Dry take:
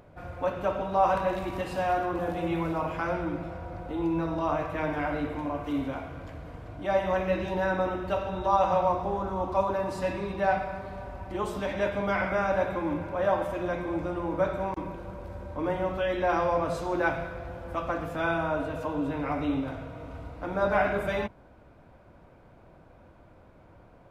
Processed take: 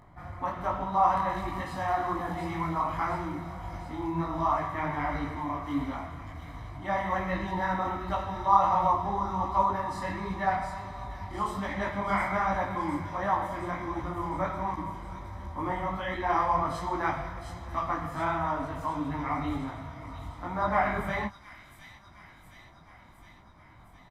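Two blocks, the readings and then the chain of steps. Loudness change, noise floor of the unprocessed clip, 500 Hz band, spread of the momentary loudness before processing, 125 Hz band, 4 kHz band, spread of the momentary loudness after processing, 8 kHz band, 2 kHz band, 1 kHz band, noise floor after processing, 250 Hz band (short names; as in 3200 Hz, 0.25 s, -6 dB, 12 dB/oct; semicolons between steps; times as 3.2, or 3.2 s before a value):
-1.0 dB, -55 dBFS, -7.5 dB, 13 LU, 0.0 dB, -2.0 dB, 14 LU, n/a, -1.5 dB, +2.5 dB, -54 dBFS, -2.5 dB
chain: bell 1400 Hz +6 dB 1.3 oct; notch 2800 Hz, Q 7.1; comb 1 ms, depth 68%; on a send: thin delay 0.713 s, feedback 65%, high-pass 3800 Hz, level -4.5 dB; on the sum: detuned doubles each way 47 cents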